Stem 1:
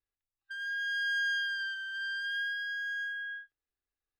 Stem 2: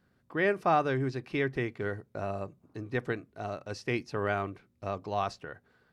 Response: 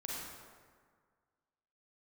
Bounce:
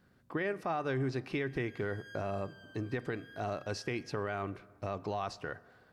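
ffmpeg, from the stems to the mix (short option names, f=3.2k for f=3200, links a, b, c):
-filter_complex "[0:a]aemphasis=mode=production:type=50kf,adelay=900,volume=-19.5dB[a];[1:a]acompressor=threshold=-32dB:ratio=6,volume=2.5dB,asplit=3[b][c][d];[c]volume=-21dB[e];[d]apad=whole_len=224891[f];[a][f]sidechaincompress=threshold=-38dB:ratio=8:attack=16:release=390[g];[2:a]atrim=start_sample=2205[h];[e][h]afir=irnorm=-1:irlink=0[i];[g][b][i]amix=inputs=3:normalize=0,alimiter=level_in=1dB:limit=-24dB:level=0:latency=1:release=13,volume=-1dB"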